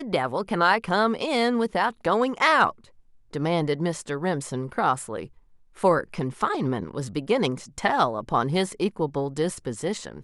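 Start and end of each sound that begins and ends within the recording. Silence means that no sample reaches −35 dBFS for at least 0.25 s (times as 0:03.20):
0:03.33–0:05.26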